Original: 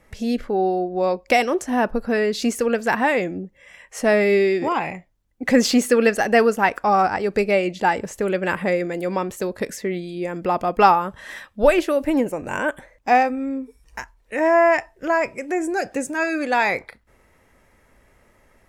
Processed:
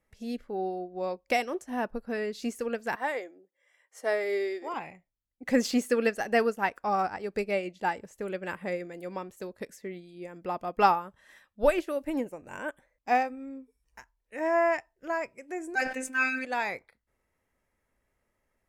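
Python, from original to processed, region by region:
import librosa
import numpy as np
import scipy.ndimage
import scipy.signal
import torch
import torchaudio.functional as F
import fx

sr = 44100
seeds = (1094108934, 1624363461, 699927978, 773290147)

y = fx.chain(x, sr, fx.highpass(hz=340.0, slope=24),
    fx.notch(hz=2600.0, q=6.8), at=(2.95, 4.74))
y = fx.chain(y, sr, fx.peak_eq(hz=2100.0, db=13.5, octaves=1.6),
    fx.robotise(hz=259.0),
    fx.sustainer(db_per_s=55.0), at=(15.75, 16.45))
y = fx.high_shelf(y, sr, hz=8800.0, db=4.5)
y = fx.upward_expand(y, sr, threshold_db=-37.0, expansion=1.5)
y = F.gain(torch.from_numpy(y), -7.0).numpy()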